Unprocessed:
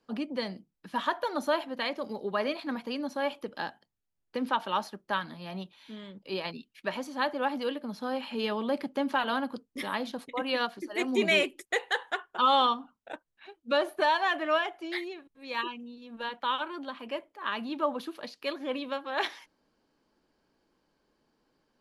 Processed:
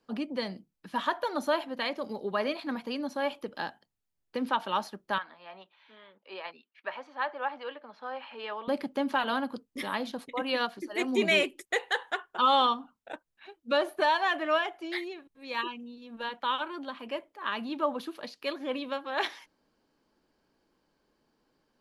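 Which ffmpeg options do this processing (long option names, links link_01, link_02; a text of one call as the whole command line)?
ffmpeg -i in.wav -filter_complex "[0:a]asettb=1/sr,asplit=3[link_01][link_02][link_03];[link_01]atrim=end=5.184[link_04];[link_02]atrim=start=5.18:end=8.68,asetpts=PTS-STARTPTS,afade=type=in:duration=0.004:curve=qsin,afade=type=out:start_time=3.496:duration=0.004:curve=qsin,highpass=700,lowpass=2200[link_05];[link_03]atrim=start=8.676[link_06];[link_04][link_05]acrossfade=duration=0.004:curve1=hsin:curve2=qsin[link_07];[link_07][link_06]acrossfade=duration=0.004:curve1=qsin:curve2=hsin" out.wav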